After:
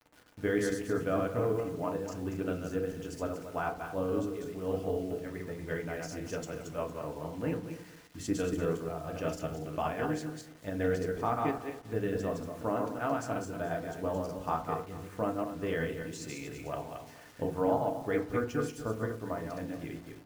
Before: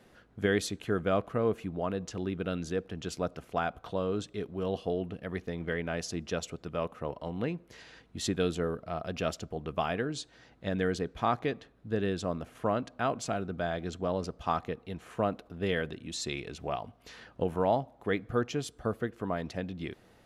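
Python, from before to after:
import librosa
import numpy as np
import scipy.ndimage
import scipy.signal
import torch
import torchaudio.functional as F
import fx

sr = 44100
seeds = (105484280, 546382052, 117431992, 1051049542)

p1 = fx.reverse_delay_fb(x, sr, ms=117, feedback_pct=45, wet_db=-2.5)
p2 = fx.peak_eq(p1, sr, hz=3800.0, db=-11.5, octaves=0.52)
p3 = fx.level_steps(p2, sr, step_db=15)
p4 = p2 + F.gain(torch.from_numpy(p3), -3.0).numpy()
p5 = fx.quant_dither(p4, sr, seeds[0], bits=8, dither='none')
p6 = fx.rev_fdn(p5, sr, rt60_s=0.38, lf_ratio=1.1, hf_ratio=0.5, size_ms=20.0, drr_db=3.5)
y = F.gain(torch.from_numpy(p6), -8.5).numpy()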